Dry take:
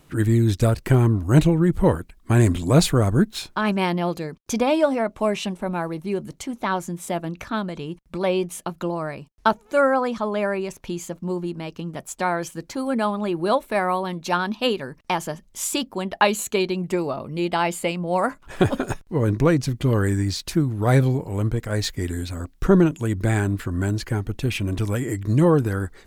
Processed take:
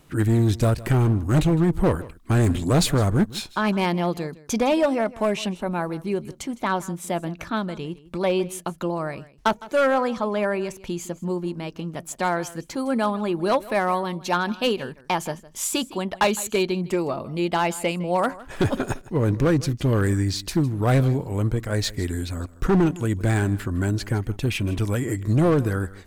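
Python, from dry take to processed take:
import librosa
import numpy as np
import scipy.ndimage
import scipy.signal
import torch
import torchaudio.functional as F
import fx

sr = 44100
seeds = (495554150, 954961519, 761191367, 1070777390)

y = np.clip(x, -10.0 ** (-14.0 / 20.0), 10.0 ** (-14.0 / 20.0))
y = y + 10.0 ** (-19.0 / 20.0) * np.pad(y, (int(159 * sr / 1000.0), 0))[:len(y)]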